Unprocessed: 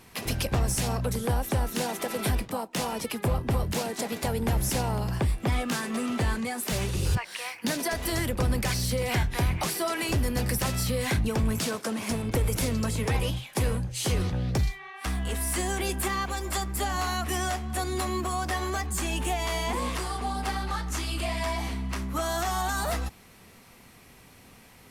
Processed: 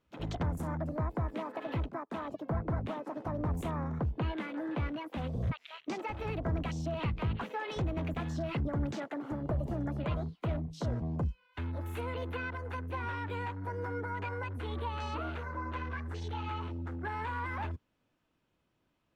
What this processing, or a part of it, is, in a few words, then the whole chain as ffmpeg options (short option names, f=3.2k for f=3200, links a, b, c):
nightcore: -af "afwtdn=0.0158,asetrate=57330,aresample=44100,aemphasis=mode=reproduction:type=75fm,volume=-7.5dB"